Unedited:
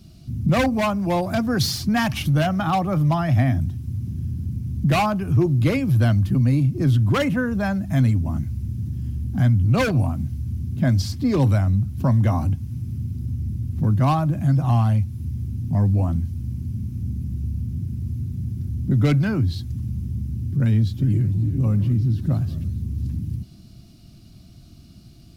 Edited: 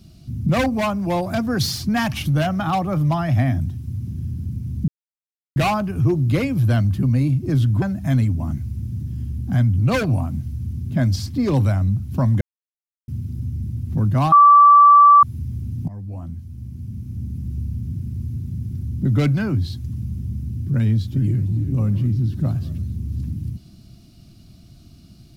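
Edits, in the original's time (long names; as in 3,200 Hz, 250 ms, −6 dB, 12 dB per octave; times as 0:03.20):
0:04.88: splice in silence 0.68 s
0:07.14–0:07.68: remove
0:12.27–0:12.94: silence
0:14.18–0:15.09: beep over 1,160 Hz −6 dBFS
0:15.74–0:17.41: fade in, from −18 dB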